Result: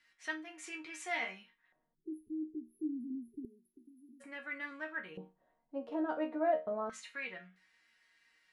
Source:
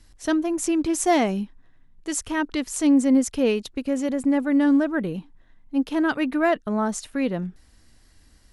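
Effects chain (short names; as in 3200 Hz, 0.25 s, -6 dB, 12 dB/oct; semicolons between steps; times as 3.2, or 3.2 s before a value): resonator bank D#3 minor, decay 0.25 s; in parallel at +3 dB: compressor, threshold -43 dBFS, peak gain reduction 14 dB; on the sum: LFO band-pass square 0.29 Hz 610–2100 Hz; spectral delete 1.95–4.21, 430–9900 Hz; gain +7 dB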